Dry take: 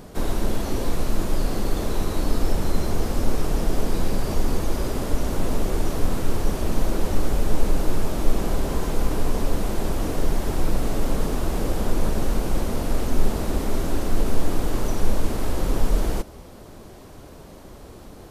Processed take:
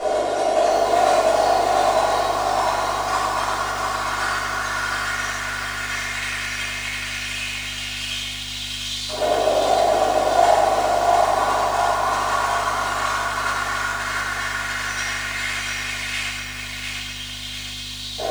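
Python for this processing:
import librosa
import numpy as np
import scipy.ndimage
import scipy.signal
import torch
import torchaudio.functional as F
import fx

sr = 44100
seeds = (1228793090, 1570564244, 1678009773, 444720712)

y = scipy.signal.sosfilt(scipy.signal.butter(4, 8900.0, 'lowpass', fs=sr, output='sos'), x)
y = fx.dereverb_blind(y, sr, rt60_s=1.6)
y = scipy.signal.sosfilt(scipy.signal.bessel(2, 170.0, 'highpass', norm='mag', fs=sr, output='sos'), y)
y = y + 0.55 * np.pad(y, (int(2.8 * sr / 1000.0), 0))[:len(y)]
y = fx.over_compress(y, sr, threshold_db=-39.0, ratio=-1.0)
y = fx.filter_lfo_highpass(y, sr, shape='saw_up', hz=0.11, low_hz=560.0, high_hz=3800.0, q=3.9)
y = fx.add_hum(y, sr, base_hz=50, snr_db=21)
y = y + 10.0 ** (-4.0 / 20.0) * np.pad(y, (int(99 * sr / 1000.0), 0))[:len(y)]
y = fx.room_shoebox(y, sr, seeds[0], volume_m3=440.0, walls='mixed', distance_m=6.6)
y = fx.echo_crushed(y, sr, ms=700, feedback_pct=55, bits=7, wet_db=-3)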